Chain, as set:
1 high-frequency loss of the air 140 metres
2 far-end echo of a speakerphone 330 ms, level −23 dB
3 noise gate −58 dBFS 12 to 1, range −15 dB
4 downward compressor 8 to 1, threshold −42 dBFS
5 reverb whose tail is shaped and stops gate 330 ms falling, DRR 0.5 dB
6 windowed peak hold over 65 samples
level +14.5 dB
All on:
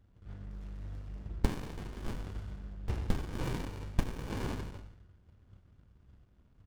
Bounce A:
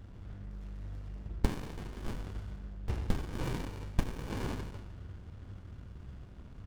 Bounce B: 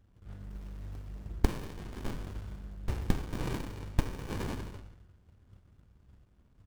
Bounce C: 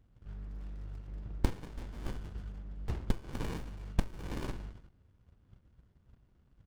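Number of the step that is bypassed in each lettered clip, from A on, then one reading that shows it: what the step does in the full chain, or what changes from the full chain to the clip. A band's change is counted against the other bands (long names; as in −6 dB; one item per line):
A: 3, change in momentary loudness spread +2 LU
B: 1, change in crest factor +2.0 dB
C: 5, change in integrated loudness −1.5 LU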